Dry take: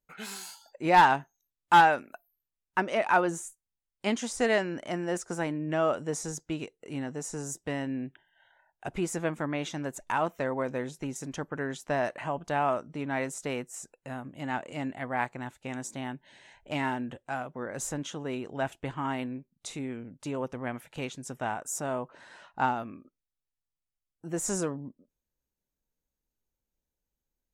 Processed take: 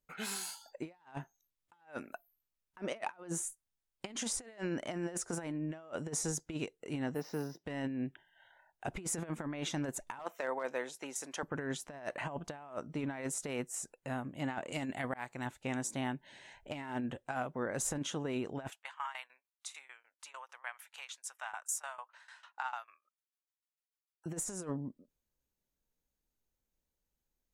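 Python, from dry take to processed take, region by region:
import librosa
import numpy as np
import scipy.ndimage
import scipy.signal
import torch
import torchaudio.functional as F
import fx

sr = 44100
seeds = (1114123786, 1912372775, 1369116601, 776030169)

y = fx.chain(x, sr, fx.highpass(hz=140.0, slope=12),
    fx.high_shelf(hz=8400.0, db=4.5),
    fx.resample_bad(factor=4, down='filtered', up='hold'), at=(7.14, 7.66))
y = fx.chain(y, sr, fx.highpass(hz=540.0, slope=12),
    fx.overload_stage(gain_db=22.5), at=(10.19, 11.43))
y = fx.chain(y, sr, fx.high_shelf(hz=3500.0, db=9.5),
    fx.auto_swell(attack_ms=384.0), at=(14.72, 15.46))
y = fx.chain(y, sr, fx.cheby2_highpass(hz=160.0, order=4, stop_db=80),
    fx.tremolo_shape(shape='saw_down', hz=6.7, depth_pct=90), at=(18.7, 24.26))
y = fx.dynamic_eq(y, sr, hz=9900.0, q=3.2, threshold_db=-58.0, ratio=4.0, max_db=5)
y = fx.over_compress(y, sr, threshold_db=-34.0, ratio=-0.5)
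y = y * 10.0 ** (-4.5 / 20.0)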